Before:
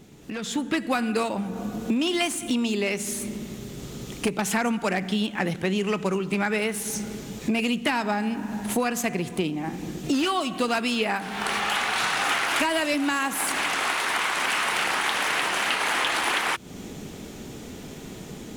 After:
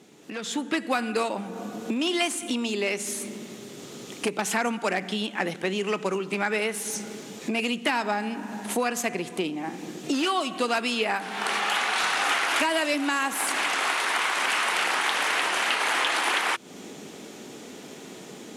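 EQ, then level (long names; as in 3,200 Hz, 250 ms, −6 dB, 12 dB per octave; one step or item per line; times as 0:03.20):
high-pass filter 270 Hz 12 dB per octave
low-pass filter 12,000 Hz 12 dB per octave
0.0 dB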